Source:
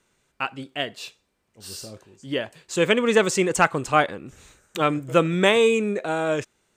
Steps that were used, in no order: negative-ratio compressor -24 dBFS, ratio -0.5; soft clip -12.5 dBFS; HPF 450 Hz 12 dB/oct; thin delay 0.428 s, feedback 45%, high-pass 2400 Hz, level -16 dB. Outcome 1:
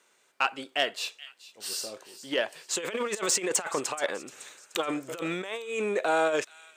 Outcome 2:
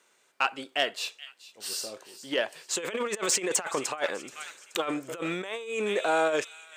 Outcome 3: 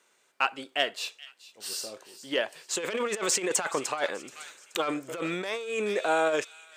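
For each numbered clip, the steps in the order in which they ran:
negative-ratio compressor > thin delay > soft clip > HPF; thin delay > negative-ratio compressor > soft clip > HPF; soft clip > thin delay > negative-ratio compressor > HPF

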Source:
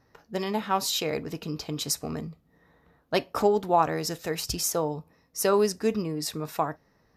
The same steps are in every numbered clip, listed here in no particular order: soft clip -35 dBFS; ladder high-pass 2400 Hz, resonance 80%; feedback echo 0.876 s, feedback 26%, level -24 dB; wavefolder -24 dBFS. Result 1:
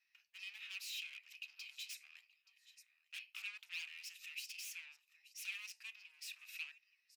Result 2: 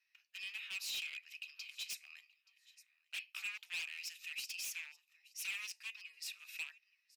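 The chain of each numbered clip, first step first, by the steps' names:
feedback echo > wavefolder > soft clip > ladder high-pass; feedback echo > wavefolder > ladder high-pass > soft clip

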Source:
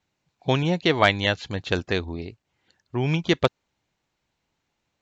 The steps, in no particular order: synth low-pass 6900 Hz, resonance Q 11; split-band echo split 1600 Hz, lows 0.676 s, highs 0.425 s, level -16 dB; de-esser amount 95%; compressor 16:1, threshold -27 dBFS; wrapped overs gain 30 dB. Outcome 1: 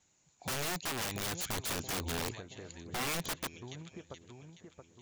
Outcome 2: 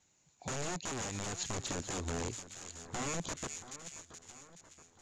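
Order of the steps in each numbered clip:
compressor > split-band echo > de-esser > synth low-pass > wrapped overs; compressor > wrapped overs > split-band echo > de-esser > synth low-pass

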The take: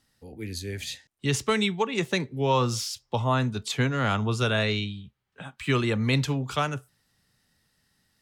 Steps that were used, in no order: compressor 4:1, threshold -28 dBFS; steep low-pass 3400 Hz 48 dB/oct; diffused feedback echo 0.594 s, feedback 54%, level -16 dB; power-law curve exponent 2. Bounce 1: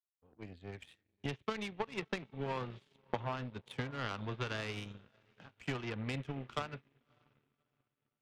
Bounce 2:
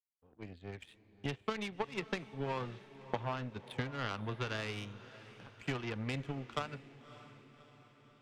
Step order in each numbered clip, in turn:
steep low-pass > compressor > diffused feedback echo > power-law curve; steep low-pass > compressor > power-law curve > diffused feedback echo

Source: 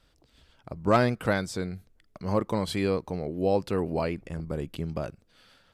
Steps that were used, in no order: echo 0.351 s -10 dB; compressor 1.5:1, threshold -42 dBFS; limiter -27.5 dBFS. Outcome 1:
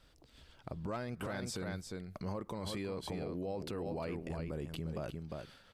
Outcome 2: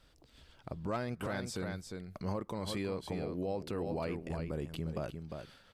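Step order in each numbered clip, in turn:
echo > limiter > compressor; echo > compressor > limiter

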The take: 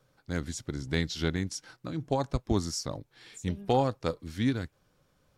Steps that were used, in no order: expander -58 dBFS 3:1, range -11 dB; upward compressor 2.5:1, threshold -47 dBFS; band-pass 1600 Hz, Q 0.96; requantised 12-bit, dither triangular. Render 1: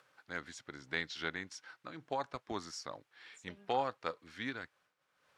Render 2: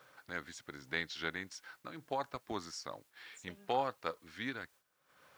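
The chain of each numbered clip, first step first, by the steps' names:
requantised > expander > upward compressor > band-pass; band-pass > upward compressor > requantised > expander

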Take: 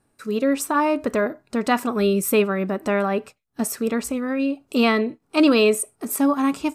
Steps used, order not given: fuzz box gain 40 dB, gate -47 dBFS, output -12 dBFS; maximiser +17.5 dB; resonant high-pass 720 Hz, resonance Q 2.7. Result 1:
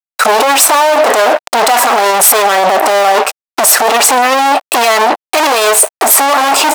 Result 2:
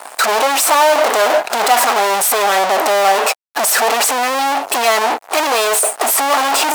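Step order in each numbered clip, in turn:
fuzz box > resonant high-pass > maximiser; maximiser > fuzz box > resonant high-pass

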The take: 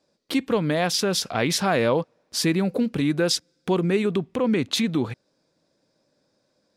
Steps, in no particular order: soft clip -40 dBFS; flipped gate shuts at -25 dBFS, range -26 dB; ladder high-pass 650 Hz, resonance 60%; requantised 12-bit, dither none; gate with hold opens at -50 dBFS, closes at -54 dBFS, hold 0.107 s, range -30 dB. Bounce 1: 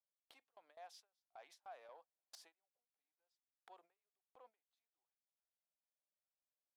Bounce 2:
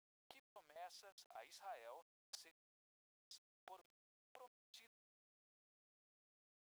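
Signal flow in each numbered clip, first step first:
requantised > flipped gate > soft clip > ladder high-pass > gate with hold; flipped gate > ladder high-pass > soft clip > gate with hold > requantised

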